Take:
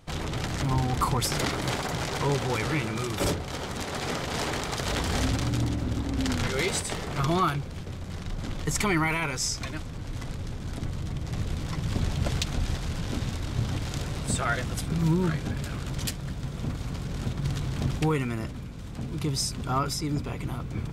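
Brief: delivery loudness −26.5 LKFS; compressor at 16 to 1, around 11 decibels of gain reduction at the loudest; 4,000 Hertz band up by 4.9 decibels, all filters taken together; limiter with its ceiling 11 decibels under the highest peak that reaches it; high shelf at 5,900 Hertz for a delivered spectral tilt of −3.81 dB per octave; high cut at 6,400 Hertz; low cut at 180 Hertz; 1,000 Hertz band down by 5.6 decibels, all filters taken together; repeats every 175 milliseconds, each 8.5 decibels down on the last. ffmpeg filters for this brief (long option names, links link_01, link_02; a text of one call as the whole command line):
ffmpeg -i in.wav -af "highpass=180,lowpass=6400,equalizer=frequency=1000:width_type=o:gain=-8,equalizer=frequency=4000:width_type=o:gain=4,highshelf=frequency=5900:gain=9,acompressor=threshold=-34dB:ratio=16,alimiter=level_in=4dB:limit=-24dB:level=0:latency=1,volume=-4dB,aecho=1:1:175|350|525|700:0.376|0.143|0.0543|0.0206,volume=12dB" out.wav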